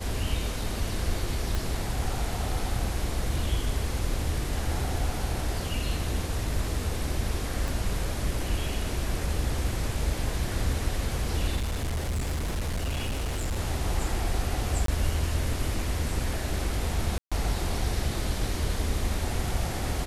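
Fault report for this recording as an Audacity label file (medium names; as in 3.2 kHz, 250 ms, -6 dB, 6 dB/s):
1.550000	1.550000	pop
7.680000	7.680000	pop
11.560000	13.590000	clipped -25.5 dBFS
14.860000	14.880000	dropout 23 ms
17.180000	17.320000	dropout 136 ms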